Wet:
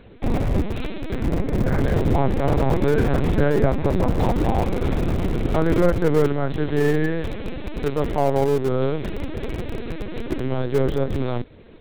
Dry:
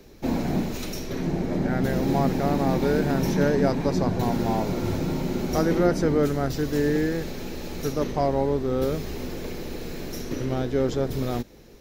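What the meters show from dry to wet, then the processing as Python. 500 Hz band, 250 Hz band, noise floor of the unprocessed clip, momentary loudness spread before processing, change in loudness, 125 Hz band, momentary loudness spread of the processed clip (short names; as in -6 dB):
+3.0 dB, +1.0 dB, -42 dBFS, 12 LU, +3.0 dB, +4.5 dB, 11 LU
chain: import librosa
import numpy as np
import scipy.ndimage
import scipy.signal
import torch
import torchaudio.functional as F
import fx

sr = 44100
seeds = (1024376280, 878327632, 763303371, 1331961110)

p1 = fx.lpc_vocoder(x, sr, seeds[0], excitation='pitch_kept', order=10)
p2 = fx.schmitt(p1, sr, flips_db=-26.5)
p3 = p1 + F.gain(torch.from_numpy(p2), -9.5).numpy()
y = F.gain(torch.from_numpy(p3), 3.5).numpy()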